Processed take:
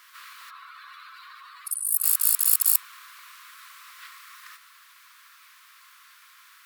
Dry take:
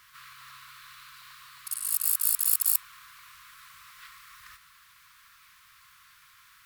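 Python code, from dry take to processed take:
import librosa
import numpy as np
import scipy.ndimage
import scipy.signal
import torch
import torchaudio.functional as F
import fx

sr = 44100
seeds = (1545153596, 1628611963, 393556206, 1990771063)

y = fx.spec_expand(x, sr, power=2.0, at=(0.49, 2.02), fade=0.02)
y = scipy.signal.sosfilt(scipy.signal.butter(4, 270.0, 'highpass', fs=sr, output='sos'), y)
y = y * 10.0 ** (4.0 / 20.0)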